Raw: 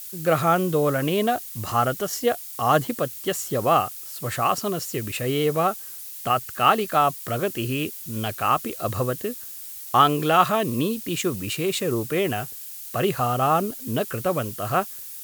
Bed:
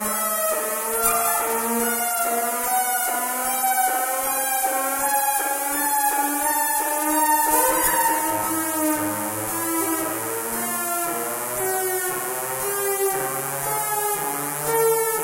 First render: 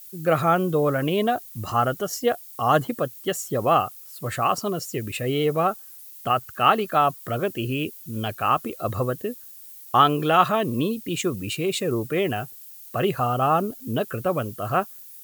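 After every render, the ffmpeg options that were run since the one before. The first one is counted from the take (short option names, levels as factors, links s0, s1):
-af "afftdn=nr=10:nf=-38"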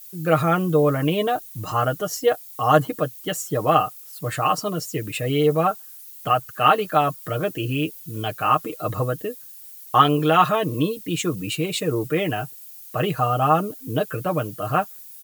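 -af "aecho=1:1:6.5:0.68"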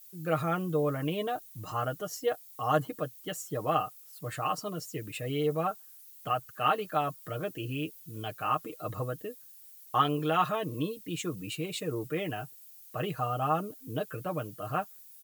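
-af "volume=0.299"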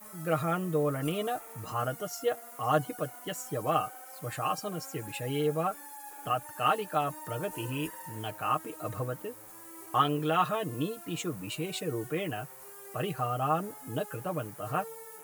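-filter_complex "[1:a]volume=0.0501[s0];[0:a][s0]amix=inputs=2:normalize=0"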